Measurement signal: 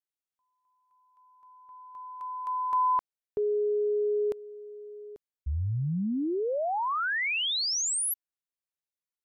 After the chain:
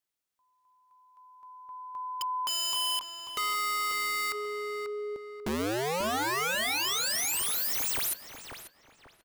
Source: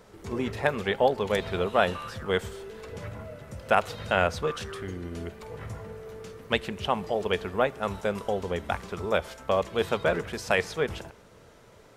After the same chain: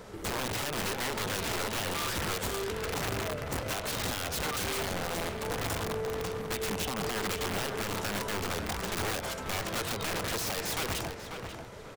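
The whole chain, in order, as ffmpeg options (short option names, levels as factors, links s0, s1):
-filter_complex "[0:a]acompressor=threshold=0.0158:ratio=8:attack=12:release=52:knee=1:detection=rms,aeval=exprs='(mod(50.1*val(0)+1,2)-1)/50.1':c=same,asplit=2[s0][s1];[s1]adelay=540,lowpass=f=2800:p=1,volume=0.473,asplit=2[s2][s3];[s3]adelay=540,lowpass=f=2800:p=1,volume=0.32,asplit=2[s4][s5];[s5]adelay=540,lowpass=f=2800:p=1,volume=0.32,asplit=2[s6][s7];[s7]adelay=540,lowpass=f=2800:p=1,volume=0.32[s8];[s0][s2][s4][s6][s8]amix=inputs=5:normalize=0,volume=2.11"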